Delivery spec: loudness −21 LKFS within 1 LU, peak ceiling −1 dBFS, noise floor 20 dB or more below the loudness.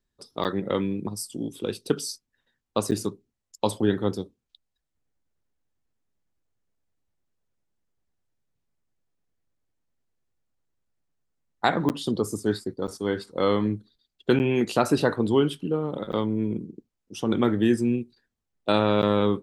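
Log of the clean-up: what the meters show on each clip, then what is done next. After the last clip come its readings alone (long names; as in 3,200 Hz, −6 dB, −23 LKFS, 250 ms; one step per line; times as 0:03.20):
number of dropouts 7; longest dropout 9.1 ms; integrated loudness −26.0 LKFS; sample peak −4.5 dBFS; target loudness −21.0 LKFS
→ repair the gap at 0:00.44/0:02.91/0:11.89/0:12.87/0:14.39/0:16.12/0:19.02, 9.1 ms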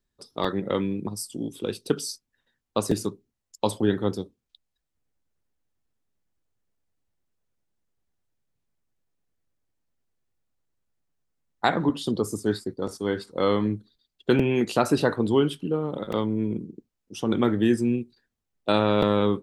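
number of dropouts 0; integrated loudness −26.0 LKFS; sample peak −4.5 dBFS; target loudness −21.0 LKFS
→ level +5 dB
brickwall limiter −1 dBFS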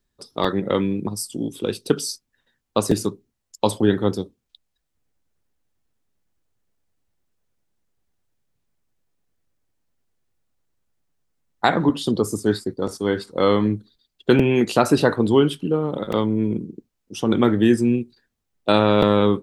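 integrated loudness −21.0 LKFS; sample peak −1.0 dBFS; background noise floor −77 dBFS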